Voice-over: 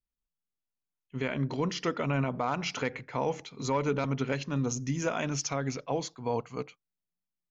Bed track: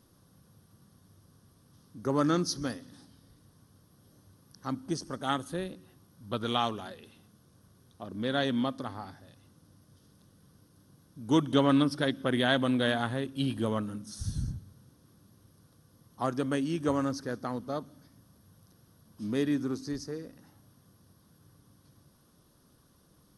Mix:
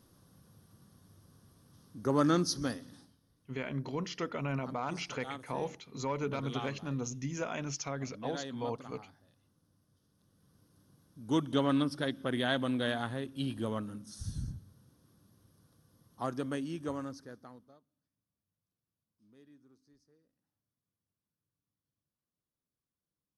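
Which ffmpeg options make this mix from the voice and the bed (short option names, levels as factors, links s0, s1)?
-filter_complex "[0:a]adelay=2350,volume=0.501[s0];[1:a]volume=2.24,afade=t=out:st=2.89:d=0.29:silence=0.251189,afade=t=in:st=10.11:d=0.61:silence=0.421697,afade=t=out:st=16.37:d=1.42:silence=0.0473151[s1];[s0][s1]amix=inputs=2:normalize=0"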